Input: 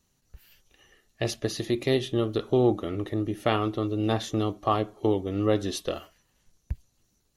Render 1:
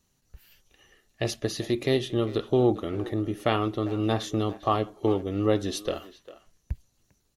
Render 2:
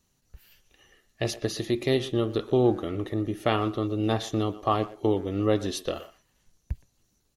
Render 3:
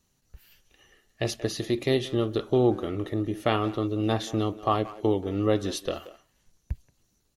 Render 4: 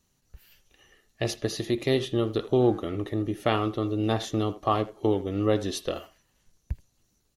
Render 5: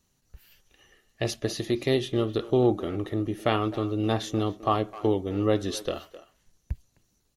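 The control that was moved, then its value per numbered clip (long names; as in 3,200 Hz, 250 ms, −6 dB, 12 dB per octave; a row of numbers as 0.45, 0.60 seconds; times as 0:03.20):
far-end echo of a speakerphone, delay time: 400, 120, 180, 80, 260 milliseconds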